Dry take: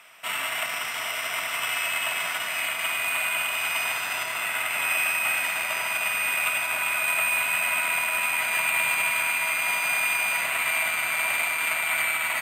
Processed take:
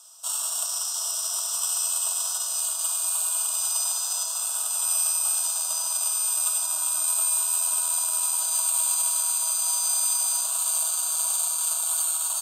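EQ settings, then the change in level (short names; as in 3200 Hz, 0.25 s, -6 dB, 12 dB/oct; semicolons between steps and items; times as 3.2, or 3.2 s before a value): HPF 1100 Hz 12 dB/oct; Butterworth band-stop 2100 Hz, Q 0.58; bell 6700 Hz +14.5 dB 1.5 oct; 0.0 dB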